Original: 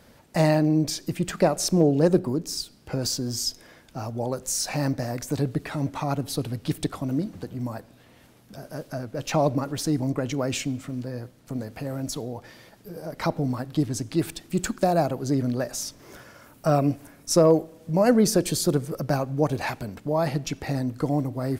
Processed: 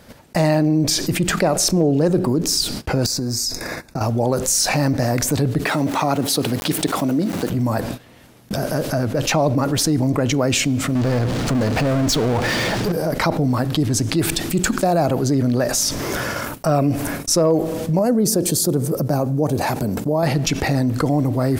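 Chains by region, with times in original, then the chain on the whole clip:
3.06–4.01 s: compression 4:1, threshold -42 dBFS + Butterworth band-stop 3.1 kHz, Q 3.1
5.65–7.50 s: high-pass 200 Hz + small samples zeroed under -48 dBFS
10.95–12.92 s: low-pass 5.8 kHz + power-law waveshaper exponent 0.5
17.99–20.23 s: high-pass 160 Hz 6 dB/octave + peaking EQ 2.3 kHz -13 dB 2.7 oct
whole clip: gate -48 dBFS, range -33 dB; level flattener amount 70%

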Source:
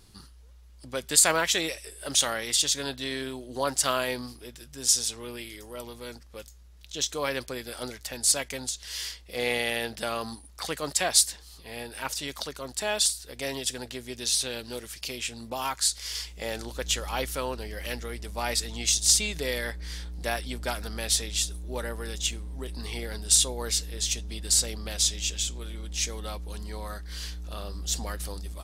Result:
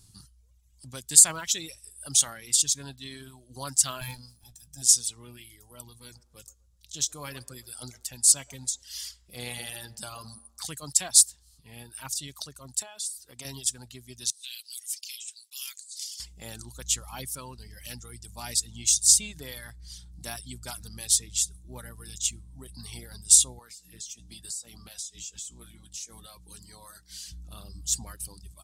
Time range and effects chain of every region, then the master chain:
4.01–4.82 s: comb filter that takes the minimum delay 1.2 ms + doubling 18 ms -11 dB
5.87–10.62 s: de-hum 229.1 Hz, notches 35 + feedback echo behind a band-pass 123 ms, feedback 36%, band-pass 730 Hz, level -8 dB
12.82–13.45 s: high-pass 200 Hz 6 dB/octave + peaking EQ 930 Hz +5.5 dB 1.7 oct + compression, threshold -31 dBFS
14.30–16.20 s: inverse Chebyshev high-pass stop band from 410 Hz, stop band 80 dB + compressor with a negative ratio -39 dBFS
23.59–27.32 s: high-pass 250 Hz 6 dB/octave + compression 20:1, threshold -35 dBFS + doubling 17 ms -7 dB
whole clip: treble shelf 4.4 kHz +5 dB; reverb removal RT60 1.7 s; ten-band graphic EQ 125 Hz +11 dB, 500 Hz -9 dB, 2 kHz -6 dB, 8 kHz +8 dB; trim -6 dB

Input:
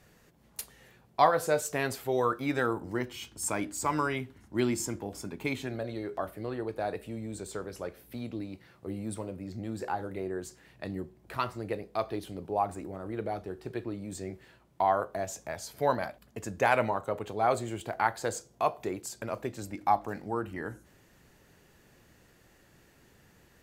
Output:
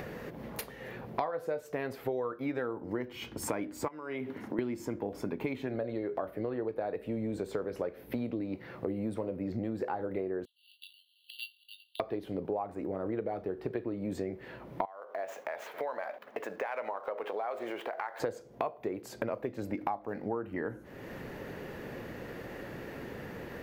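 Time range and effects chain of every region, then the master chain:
3.88–4.59 s: high-pass 180 Hz + compression 4:1, threshold -45 dBFS
10.45–12.00 s: brick-wall FIR high-pass 2.7 kHz + doubling 20 ms -6 dB + careless resampling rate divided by 6×, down filtered, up hold
14.85–18.20 s: median filter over 9 samples + high-pass 670 Hz + compression 3:1, threshold -46 dBFS
whole clip: upward compressor, threshold -43 dBFS; ten-band graphic EQ 125 Hz +4 dB, 250 Hz +7 dB, 500 Hz +11 dB, 1 kHz +4 dB, 2 kHz +6 dB, 8 kHz -11 dB; compression 16:1, threshold -33 dBFS; trim +2.5 dB

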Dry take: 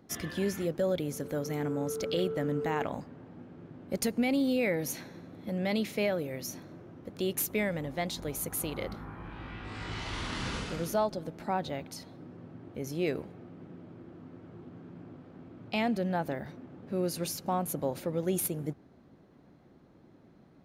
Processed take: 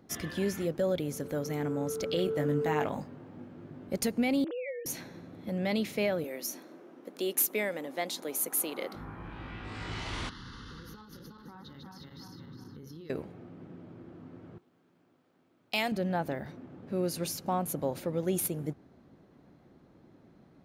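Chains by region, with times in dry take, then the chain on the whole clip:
2.26–3.89 s: high-pass 61 Hz + treble shelf 9.2 kHz +5 dB + doubling 20 ms -5.5 dB
4.44–4.86 s: formants replaced by sine waves + compression 4:1, threshold -36 dBFS
6.24–8.95 s: high-pass 250 Hz 24 dB/octave + peaking EQ 12 kHz +5.5 dB 1.1 oct
10.29–13.10 s: backward echo that repeats 181 ms, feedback 54%, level -2 dB + compression 12:1, threshold -40 dBFS + static phaser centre 2.4 kHz, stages 6
14.58–15.92 s: RIAA curve recording + gate -46 dBFS, range -14 dB
whole clip: none

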